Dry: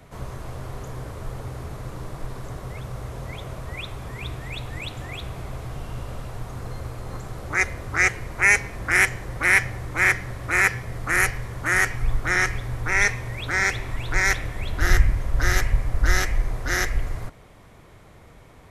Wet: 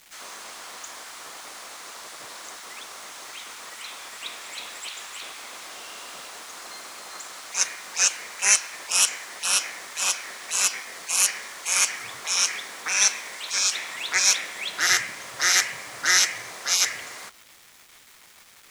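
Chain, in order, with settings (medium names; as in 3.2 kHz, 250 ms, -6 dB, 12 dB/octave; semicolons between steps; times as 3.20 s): spectral gate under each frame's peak -15 dB weak; frequency weighting ITU-R 468; bit crusher 8-bit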